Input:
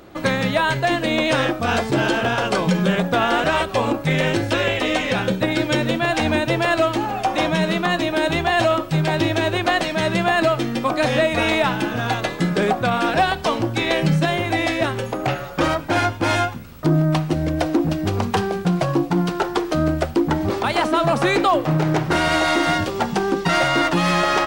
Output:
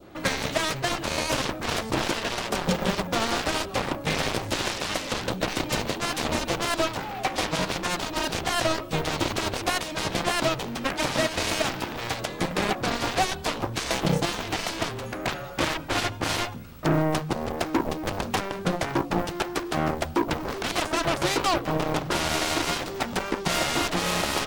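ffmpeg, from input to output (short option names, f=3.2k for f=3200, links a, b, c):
-af "aeval=exprs='0.447*(cos(1*acos(clip(val(0)/0.447,-1,1)))-cos(1*PI/2))+0.158*(cos(7*acos(clip(val(0)/0.447,-1,1)))-cos(7*PI/2))':c=same,adynamicequalizer=threshold=0.0316:dfrequency=1800:dqfactor=1.1:tfrequency=1800:tqfactor=1.1:attack=5:release=100:ratio=0.375:range=2:mode=cutabove:tftype=bell,volume=-7dB"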